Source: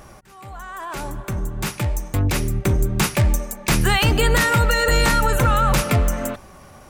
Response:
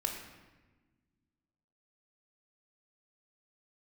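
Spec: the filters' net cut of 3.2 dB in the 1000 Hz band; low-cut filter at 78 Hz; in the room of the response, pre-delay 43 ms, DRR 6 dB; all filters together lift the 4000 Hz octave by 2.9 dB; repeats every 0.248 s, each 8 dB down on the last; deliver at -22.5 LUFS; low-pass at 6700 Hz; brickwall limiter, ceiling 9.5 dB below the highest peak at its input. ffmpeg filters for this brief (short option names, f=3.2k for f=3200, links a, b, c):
-filter_complex "[0:a]highpass=78,lowpass=6.7k,equalizer=f=1k:t=o:g=-5,equalizer=f=4k:t=o:g=4.5,alimiter=limit=-15dB:level=0:latency=1,aecho=1:1:248|496|744|992|1240:0.398|0.159|0.0637|0.0255|0.0102,asplit=2[a][b];[1:a]atrim=start_sample=2205,adelay=43[c];[b][c]afir=irnorm=-1:irlink=0,volume=-9dB[d];[a][d]amix=inputs=2:normalize=0,volume=1dB"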